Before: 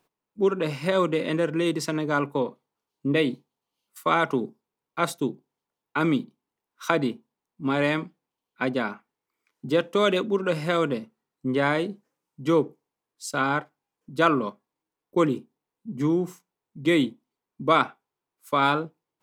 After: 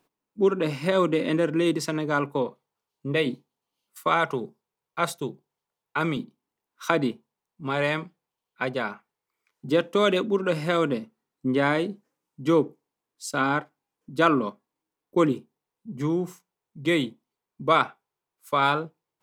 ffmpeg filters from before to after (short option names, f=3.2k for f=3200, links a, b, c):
-af "asetnsamples=n=441:p=0,asendcmd='1.77 equalizer g -1.5;2.47 equalizer g -8.5;3.26 equalizer g 0;4.08 equalizer g -10;6.17 equalizer g 0.5;7.11 equalizer g -8.5;9.68 equalizer g 2;15.32 equalizer g -5.5',equalizer=f=270:t=o:w=0.57:g=4.5"